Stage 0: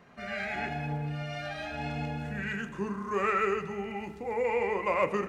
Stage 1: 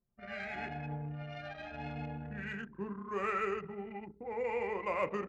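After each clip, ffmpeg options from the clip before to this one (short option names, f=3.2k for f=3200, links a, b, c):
-af "anlmdn=1.58,volume=-6.5dB"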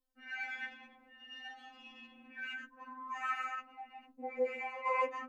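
-af "afftfilt=real='re*3.46*eq(mod(b,12),0)':imag='im*3.46*eq(mod(b,12),0)':win_size=2048:overlap=0.75,volume=2.5dB"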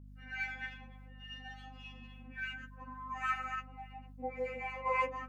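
-filter_complex "[0:a]acrossover=split=1000[a][b];[a]aeval=exprs='val(0)*(1-0.7/2+0.7/2*cos(2*PI*3.5*n/s))':c=same[c];[b]aeval=exprs='val(0)*(1-0.7/2-0.7/2*cos(2*PI*3.5*n/s))':c=same[d];[c][d]amix=inputs=2:normalize=0,aeval=exprs='val(0)+0.00178*(sin(2*PI*50*n/s)+sin(2*PI*2*50*n/s)/2+sin(2*PI*3*50*n/s)/3+sin(2*PI*4*50*n/s)/4+sin(2*PI*5*50*n/s)/5)':c=same,volume=4dB"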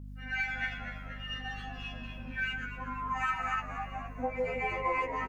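-filter_complex "[0:a]acompressor=threshold=-37dB:ratio=6,asplit=2[a][b];[b]asplit=8[c][d][e][f][g][h][i][j];[c]adelay=239,afreqshift=-79,volume=-10.5dB[k];[d]adelay=478,afreqshift=-158,volume=-14.7dB[l];[e]adelay=717,afreqshift=-237,volume=-18.8dB[m];[f]adelay=956,afreqshift=-316,volume=-23dB[n];[g]adelay=1195,afreqshift=-395,volume=-27.1dB[o];[h]adelay=1434,afreqshift=-474,volume=-31.3dB[p];[i]adelay=1673,afreqshift=-553,volume=-35.4dB[q];[j]adelay=1912,afreqshift=-632,volume=-39.6dB[r];[k][l][m][n][o][p][q][r]amix=inputs=8:normalize=0[s];[a][s]amix=inputs=2:normalize=0,volume=8.5dB"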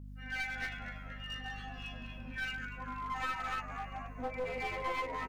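-af "aeval=exprs='clip(val(0),-1,0.02)':c=same,volume=-3dB"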